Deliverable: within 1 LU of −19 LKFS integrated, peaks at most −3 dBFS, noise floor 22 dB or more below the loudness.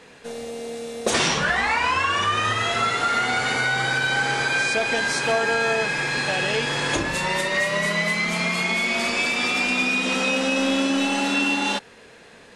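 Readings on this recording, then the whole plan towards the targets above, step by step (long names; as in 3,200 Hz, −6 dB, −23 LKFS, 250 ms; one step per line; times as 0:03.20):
integrated loudness −21.0 LKFS; sample peak −10.0 dBFS; target loudness −19.0 LKFS
→ level +2 dB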